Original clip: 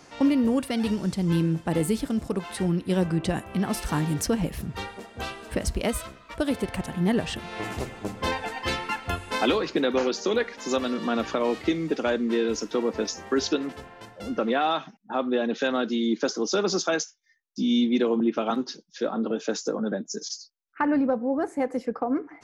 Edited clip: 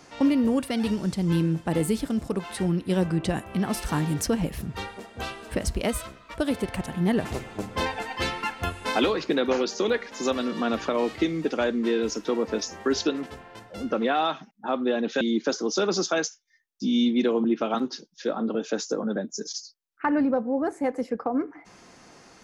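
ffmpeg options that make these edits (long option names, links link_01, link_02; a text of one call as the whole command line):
ffmpeg -i in.wav -filter_complex "[0:a]asplit=3[link_01][link_02][link_03];[link_01]atrim=end=7.252[link_04];[link_02]atrim=start=7.708:end=15.672[link_05];[link_03]atrim=start=15.968[link_06];[link_04][link_05]acrossfade=duration=0.004:curve1=hsin:curve2=hsin[link_07];[link_07][link_06]acrossfade=duration=0.004:curve1=hsin:curve2=hsin" out.wav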